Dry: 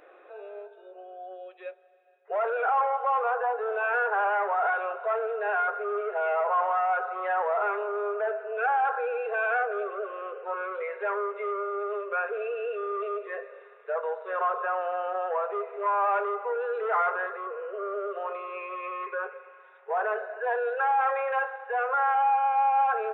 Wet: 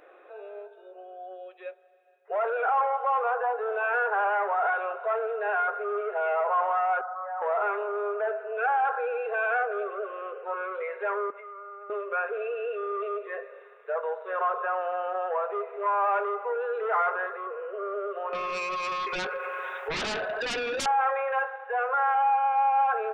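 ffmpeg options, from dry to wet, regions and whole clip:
-filter_complex "[0:a]asettb=1/sr,asplit=3[a][b][c];[a]atrim=end=7.014[d];[b]atrim=start=7.01:end=7.42,asetpts=PTS-STARTPTS,afade=t=in:d=0.004:c=qsin,afade=t=out:st=0.406:d=0.004:c=qsin,asoftclip=type=hard:threshold=-30.5dB,asuperpass=centerf=930:order=8:qfactor=1[e];[c]atrim=start=7.416[f];[d][e]acrossfade=d=0.004:c1=hsin:c2=qsin[g];[g][f]acrossfade=d=0.004:c1=qsin:c2=hsin,asettb=1/sr,asplit=3[h][i][j];[h]atrim=end=11.304[k];[i]atrim=start=11.3:end=11.9,asetpts=PTS-STARTPTS,afade=t=in:d=0.004:c=qsin,afade=t=out:st=0.596:d=0.004:c=qsin,acompressor=threshold=-35dB:ratio=10:attack=3.2:release=140:knee=1:detection=peak,highpass=720,lowpass=2.1k[l];[j]atrim=start=11.896[m];[k][l]acrossfade=d=0.004:c1=hsin:c2=qsin[n];[n][m]acrossfade=d=0.004:c1=qsin:c2=hsin,asettb=1/sr,asplit=3[o][p][q];[o]atrim=end=18.334[r];[p]atrim=start=18.33:end=20.86,asetpts=PTS-STARTPTS,afade=t=in:d=0.004:c=qsin,afade=t=out:st=2.526:d=0.004:c=qsin,highshelf=f=2.7k:g=8.5,aeval=exprs='0.158*sin(PI/2*5.01*val(0)/0.158)':c=same,acompressor=threshold=-29dB:ratio=12:attack=3.2:release=140:knee=1:detection=peak[s];[q]atrim=start=20.856[t];[r][s]acrossfade=d=0.004:c1=hsin:c2=qsin[u];[u][t]acrossfade=d=0.004:c1=qsin:c2=hsin"

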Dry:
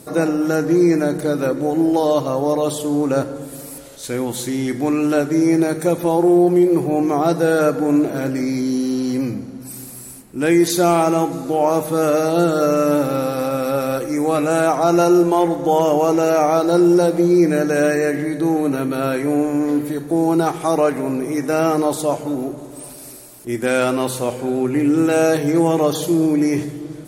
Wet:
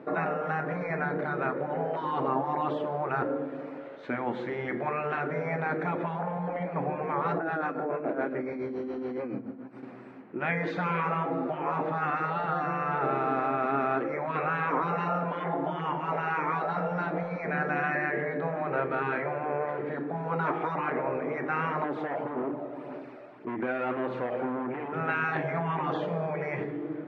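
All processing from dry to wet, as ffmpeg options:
-filter_complex "[0:a]asettb=1/sr,asplit=3[a][b][c];[a]atrim=end=7.384[d];[b]atrim=start=7.38:end=9.83,asetpts=PTS-STARTPTS,afade=t=in:d=0.004:c=qsin,afade=t=out:st=2.446:d=0.004:c=qsin,acrossover=split=160|2400[e][f][g];[g]adelay=50[h];[e]adelay=100[i];[i][f][h]amix=inputs=3:normalize=0,atrim=end_sample=108045,tremolo=f=7.1:d=0.73[j];[c]atrim=start=9.826[k];[d][j]acrossfade=d=0.004:c1=hsin:c2=qsin[l];[l][k]acrossfade=d=0.004:c1=qsin:c2=hsin,asettb=1/sr,asplit=3[m][n][o];[m]atrim=end=21.844[p];[n]atrim=start=21.84:end=24.93,asetpts=PTS-STARTPTS,afade=t=in:d=0.004:c=qsin,afade=t=out:st=3.086:d=0.004:c=qsin,aphaser=in_gain=1:out_gain=1:delay=1.6:decay=0.41:speed=1.8:type=sinusoidal,acompressor=threshold=-20dB:ratio=5:attack=3.2:release=140:knee=1:detection=peak,asoftclip=type=hard:threshold=-24dB[q];[o]atrim=start=24.926[r];[p][q]acrossfade=d=0.004:c1=hsin:c2=qsin[s];[s][r]acrossfade=d=0.004:c1=qsin:c2=hsin,highpass=260,afftfilt=real='re*lt(hypot(re,im),0.355)':imag='im*lt(hypot(re,im),0.355)':win_size=1024:overlap=0.75,lowpass=f=2.1k:w=0.5412,lowpass=f=2.1k:w=1.3066"

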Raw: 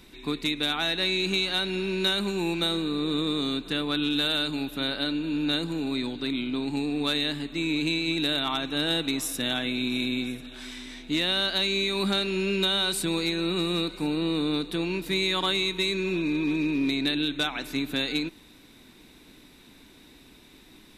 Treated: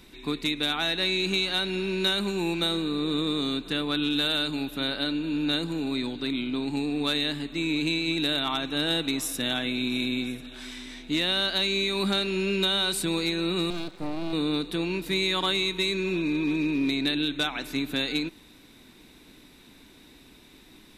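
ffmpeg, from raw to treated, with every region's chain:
-filter_complex "[0:a]asettb=1/sr,asplit=3[a][b][c];[a]atrim=end=13.704[d];[b]atrim=start=13.7:end=14.33,asetpts=PTS-STARTPTS,afade=t=in:d=0.004:c=qsin,afade=t=out:st=0.626:d=0.004:c=qsin,highpass=f=52:w=0.5412,highpass=f=52:w=1.3066,highshelf=f=2.8k:g=-9.5,aeval=exprs='max(val(0),0)':c=same[e];[c]atrim=start=14.326[f];[d][e]acrossfade=d=0.004:c1=hsin:c2=qsin[g];[g][f]acrossfade=d=0.004:c1=qsin:c2=hsin"

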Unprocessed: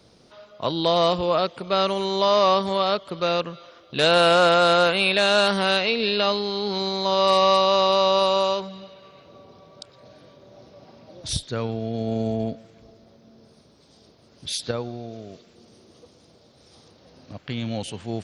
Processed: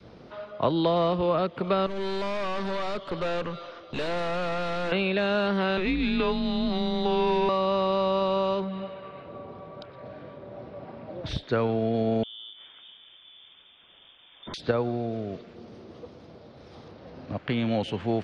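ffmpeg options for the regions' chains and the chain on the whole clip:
-filter_complex "[0:a]asettb=1/sr,asplit=3[a][b][c];[a]atrim=end=1.864[d];[b]atrim=start=1.86:end=4.92,asetpts=PTS-STARTPTS,afade=t=in:d=0.004:c=qsin,afade=t=out:st=3.056:d=0.004:c=qsin,bass=f=250:g=-2,treble=f=4k:g=10,aeval=exprs='(tanh(39.8*val(0)+0.4)-tanh(0.4))/39.8':c=same[e];[c]atrim=start=4.916[f];[d][e]acrossfade=d=0.004:c1=hsin:c2=qsin[g];[g][f]acrossfade=d=0.004:c1=qsin:c2=hsin,asettb=1/sr,asplit=3[h][i][j];[h]atrim=end=5.774[k];[i]atrim=start=5.77:end=7.49,asetpts=PTS-STARTPTS,afade=t=in:d=0.004:c=qsin,afade=t=out:st=1.716:d=0.004:c=qsin,aeval=exprs='if(lt(val(0),0),0.708*val(0),val(0))':c=same,afreqshift=-180[l];[j]atrim=start=7.486[m];[k][l]acrossfade=d=0.004:c1=hsin:c2=qsin[n];[n][m]acrossfade=d=0.004:c1=qsin:c2=hsin,asettb=1/sr,asplit=3[o][p][q];[o]atrim=end=8.644[r];[p]atrim=start=8.64:end=11.49,asetpts=PTS-STARTPTS,afade=t=in:d=0.004:c=qsin,afade=t=out:st=2.846:d=0.004:c=qsin,lowpass=2.3k,aemphasis=mode=production:type=75fm[s];[q]atrim=start=11.486[t];[r][s]acrossfade=d=0.004:c1=hsin:c2=qsin[u];[u][t]acrossfade=d=0.004:c1=qsin:c2=hsin,asettb=1/sr,asplit=3[v][w][x];[v]atrim=end=12.234[y];[w]atrim=start=12.23:end=14.54,asetpts=PTS-STARTPTS,afade=t=in:d=0.004:c=qsin,afade=t=out:st=2.306:d=0.004:c=qsin,lowpass=f=3.1k:t=q:w=0.5098,lowpass=f=3.1k:t=q:w=0.6013,lowpass=f=3.1k:t=q:w=0.9,lowpass=f=3.1k:t=q:w=2.563,afreqshift=-3700,acompressor=threshold=-41dB:ratio=6:attack=3.2:release=140:knee=1:detection=peak[z];[x]atrim=start=14.536[aa];[y][z]acrossfade=d=0.004:c1=hsin:c2=qsin[ab];[ab][aa]acrossfade=d=0.004:c1=qsin:c2=hsin,acrossover=split=220|520[ac][ad][ae];[ac]acompressor=threshold=-41dB:ratio=4[af];[ad]acompressor=threshold=-34dB:ratio=4[ag];[ae]acompressor=threshold=-33dB:ratio=4[ah];[af][ag][ah]amix=inputs=3:normalize=0,adynamicequalizer=threshold=0.00891:dfrequency=690:dqfactor=0.93:tfrequency=690:tqfactor=0.93:attack=5:release=100:ratio=0.375:range=2:mode=cutabove:tftype=bell,lowpass=2.3k,volume=7.5dB"

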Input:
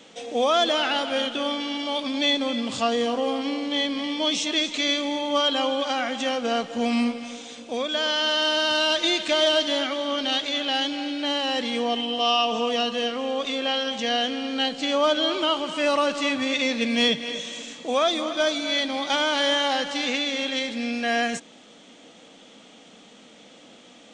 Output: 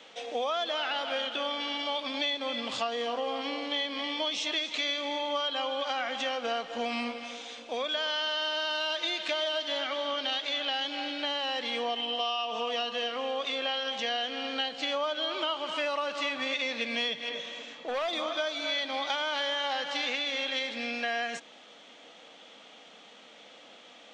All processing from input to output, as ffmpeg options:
-filter_complex "[0:a]asettb=1/sr,asplit=3[a][b][c];[a]atrim=end=17.294[d];[b]atrim=start=17.29:end=18.13,asetpts=PTS-STARTPTS,afade=t=in:d=0.004:c=qsin,afade=t=out:st=0.836:d=0.004:c=qsin,lowpass=7.6k,highshelf=f=3k:g=-8.5,volume=23.5dB,asoftclip=hard,volume=-23.5dB[e];[c]atrim=start=18.126[f];[d][e]acrossfade=d=0.004:c1=hsin:c2=qsin[g];[g][f]acrossfade=d=0.004:c1=qsin:c2=hsin,acrossover=split=480 5300:gain=0.224 1 0.2[h][i][j];[h][i][j]amix=inputs=3:normalize=0,acompressor=threshold=-28dB:ratio=6"

